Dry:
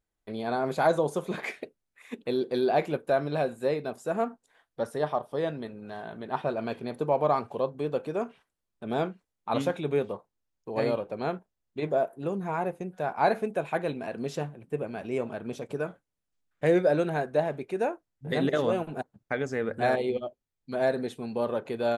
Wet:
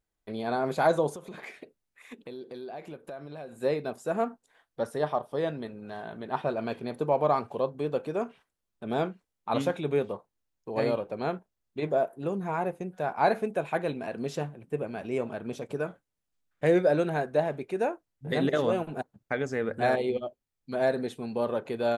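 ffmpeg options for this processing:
-filter_complex "[0:a]asettb=1/sr,asplit=3[a][b][c];[a]atrim=end=1.144[d];[b]atrim=start=1.14:end=3.59,asetpts=PTS-STARTPTS,afade=t=in:d=0.004:c=qsin,afade=t=out:st=2.446:d=0.004:c=qsin,acompressor=threshold=-40dB:ratio=4:attack=3.2:release=140:knee=1:detection=peak[e];[c]atrim=start=3.586[f];[d][e]acrossfade=d=0.004:c1=hsin:c2=qsin[g];[g][f]acrossfade=d=0.004:c1=qsin:c2=hsin"

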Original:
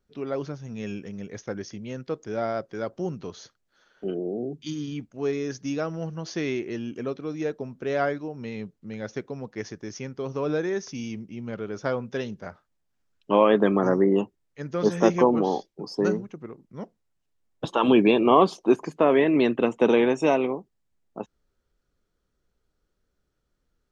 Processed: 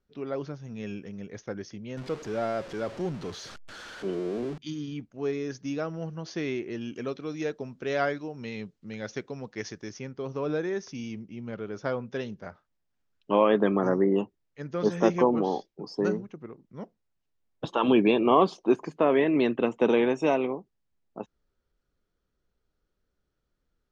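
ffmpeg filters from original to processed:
-filter_complex "[0:a]asettb=1/sr,asplit=3[a][b][c];[a]atrim=end=1.974[d];[b]atrim=start=1.97:end=4.58,asetpts=PTS-STARTPTS,afade=t=in:d=0.004:c=qsin,afade=t=out:st=2.606:d=0.004:c=qsin,aeval=exprs='val(0)+0.5*0.0188*sgn(val(0))':c=same[e];[c]atrim=start=4.576[f];[d][e]acrossfade=d=0.004:c1=hsin:c2=qsin[g];[g][f]acrossfade=d=0.004:c1=qsin:c2=hsin,asettb=1/sr,asplit=3[h][i][j];[h]atrim=end=6.814[k];[i]atrim=start=6.81:end=9.9,asetpts=PTS-STARTPTS,afade=t=in:d=0.004:c=qsin,afade=t=out:st=3.086:d=0.004:c=qsin,highshelf=f=2.2k:g=9[l];[j]atrim=start=9.896[m];[k][l]acrossfade=d=0.004:c1=hsin:c2=qsin[n];[n][m]acrossfade=d=0.004:c1=qsin:c2=hsin,lowpass=6k,volume=-3dB"

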